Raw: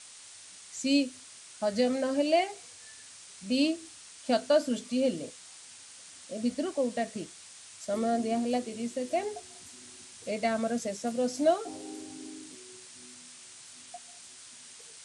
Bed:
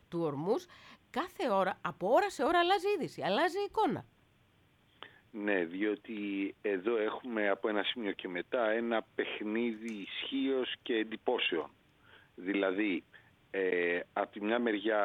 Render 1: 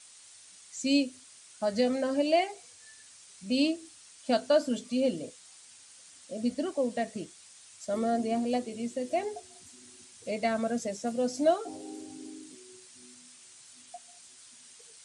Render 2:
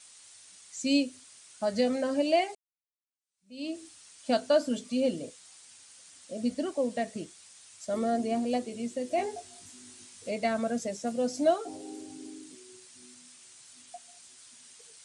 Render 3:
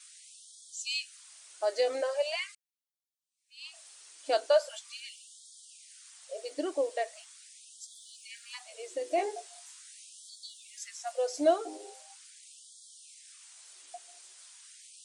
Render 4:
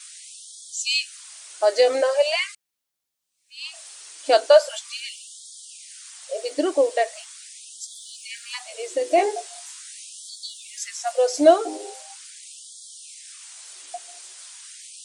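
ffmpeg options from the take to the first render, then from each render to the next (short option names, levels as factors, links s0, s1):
-af "afftdn=nr=6:nf=-50"
-filter_complex "[0:a]asettb=1/sr,asplit=3[s0][s1][s2];[s0]atrim=end=9.164[s3];[s1]atrim=start=9.16:end=10.29,asetpts=PTS-STARTPTS,afade=t=in:d=0.004:c=qsin,afade=t=out:st=1.126:d=0.004:c=qsin,asplit=2[s4][s5];[s5]adelay=20,volume=0.75[s6];[s4][s6]amix=inputs=2:normalize=0,atrim=end_sample=49833[s7];[s2]atrim=start=10.286[s8];[s3][s7]acrossfade=d=0.004:c1=hsin:c2=qsin[s9];[s9][s8]acrossfade=d=0.004:c1=qsin:c2=hsin,asplit=2[s10][s11];[s10]atrim=end=2.55,asetpts=PTS-STARTPTS,afade=t=out:st=2.546:d=0.004:c=hsin[s12];[s11]atrim=start=2.55,asetpts=PTS-STARTPTS,afade=t=in:d=1.22:c=exp[s13];[s12][s13]concat=n=2:v=0:a=1"
-filter_complex "[0:a]acrossover=split=110[s0][s1];[s0]acrusher=samples=14:mix=1:aa=0.000001[s2];[s2][s1]amix=inputs=2:normalize=0,afftfilt=real='re*gte(b*sr/1024,260*pow(3200/260,0.5+0.5*sin(2*PI*0.41*pts/sr)))':imag='im*gte(b*sr/1024,260*pow(3200/260,0.5+0.5*sin(2*PI*0.41*pts/sr)))':win_size=1024:overlap=0.75"
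-af "volume=3.55"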